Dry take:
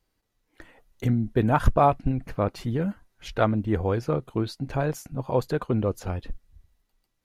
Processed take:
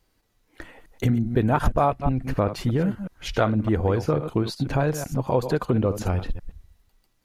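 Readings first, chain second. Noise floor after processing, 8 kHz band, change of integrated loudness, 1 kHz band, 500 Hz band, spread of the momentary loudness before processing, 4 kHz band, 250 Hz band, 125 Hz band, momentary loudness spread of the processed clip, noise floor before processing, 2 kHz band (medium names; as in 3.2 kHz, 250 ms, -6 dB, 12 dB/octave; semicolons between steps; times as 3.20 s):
-68 dBFS, +5.5 dB, +2.0 dB, 0.0 dB, +2.0 dB, 12 LU, +5.0 dB, +2.5 dB, +2.5 dB, 6 LU, -76 dBFS, +2.5 dB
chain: chunks repeated in reverse 123 ms, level -11.5 dB; compression 2.5:1, threshold -27 dBFS, peak gain reduction 11 dB; trim +7 dB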